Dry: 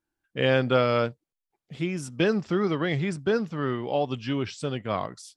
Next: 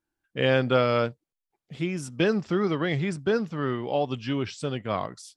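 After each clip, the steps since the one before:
no processing that can be heard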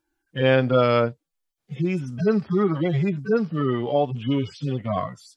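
harmonic-percussive split with one part muted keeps harmonic
in parallel at +1.5 dB: downward compressor, threshold −34 dBFS, peak gain reduction 15.5 dB
on the sum: level +2.5 dB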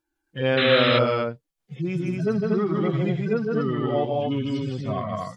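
loudspeakers that aren't time-aligned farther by 54 metres −3 dB, 82 metres −3 dB
sound drawn into the spectrogram noise, 0:00.57–0:00.99, 1,100–4,100 Hz −20 dBFS
level −4 dB

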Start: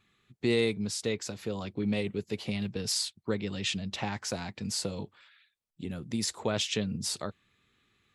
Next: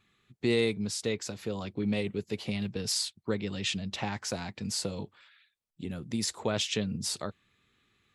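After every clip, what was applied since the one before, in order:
no processing that can be heard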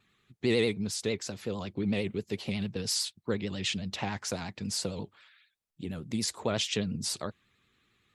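pitch vibrato 11 Hz 94 cents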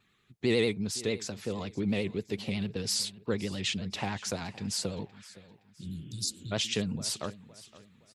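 repeating echo 517 ms, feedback 36%, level −19 dB
healed spectral selection 0:05.85–0:06.50, 210–3,500 Hz before

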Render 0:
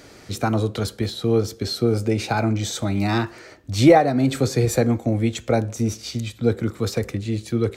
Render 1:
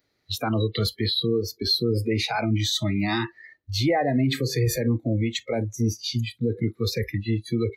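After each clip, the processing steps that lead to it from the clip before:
thirty-one-band graphic EQ 125 Hz +4 dB, 2,000 Hz +7 dB, 4,000 Hz +10 dB, 8,000 Hz −9 dB, 12,500 Hz +6 dB
brickwall limiter −14 dBFS, peak gain reduction 11.5 dB
noise reduction from a noise print of the clip's start 29 dB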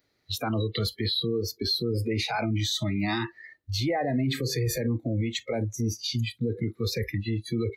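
brickwall limiter −19.5 dBFS, peak gain reduction 6 dB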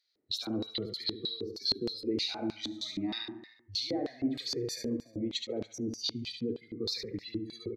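on a send: repeating echo 72 ms, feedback 52%, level −6 dB
on the sum: auto-filter band-pass square 3.2 Hz 330–4,300 Hz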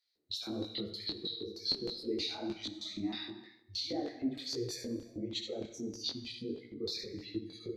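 reverb whose tail is shaped and stops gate 360 ms falling, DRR 11.5 dB
micro pitch shift up and down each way 52 cents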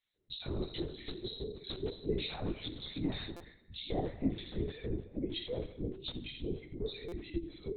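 linear-prediction vocoder at 8 kHz whisper
buffer that repeats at 0:03.36/0:07.08, samples 256, times 6
level +2 dB

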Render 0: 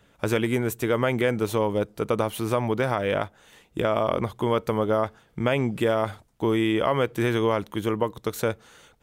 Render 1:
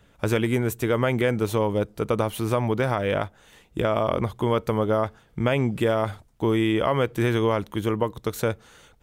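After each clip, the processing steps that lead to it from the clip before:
low-shelf EQ 95 Hz +8.5 dB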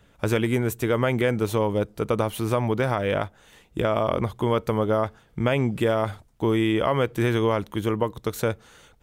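no processing that can be heard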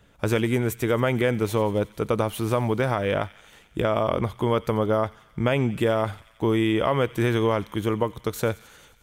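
delay with a high-pass on its return 89 ms, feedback 72%, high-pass 2,000 Hz, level −16.5 dB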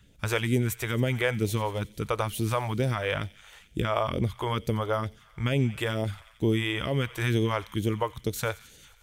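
all-pass phaser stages 2, 2.2 Hz, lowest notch 200–1,200 Hz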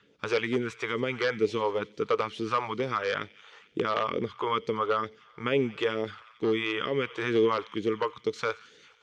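wavefolder on the positive side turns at −21 dBFS
phase shifter 0.54 Hz, delay 1 ms, feedback 26%
loudspeaker in its box 300–5,100 Hz, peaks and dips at 440 Hz +8 dB, 660 Hz −7 dB, 1,200 Hz +6 dB, 3,800 Hz −3 dB

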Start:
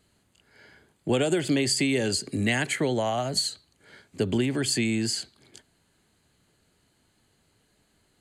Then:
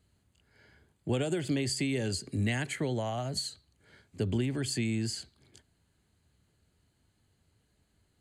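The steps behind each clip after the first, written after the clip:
parametric band 71 Hz +12 dB 2 octaves
level −8.5 dB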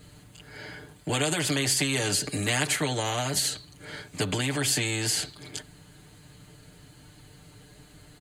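comb filter 6.7 ms, depth 89%
every bin compressed towards the loudest bin 2 to 1
level +7 dB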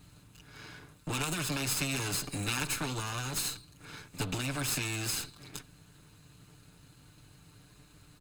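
lower of the sound and its delayed copy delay 0.76 ms
level −5 dB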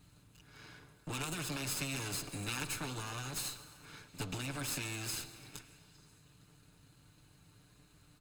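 echo through a band-pass that steps 143 ms, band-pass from 430 Hz, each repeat 0.7 octaves, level −10 dB
on a send at −15 dB: convolution reverb RT60 2.0 s, pre-delay 101 ms
on the sum: level −6 dB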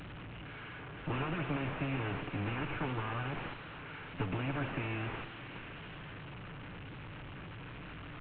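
linear delta modulator 16 kbit/s, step −45.5 dBFS
level +5.5 dB

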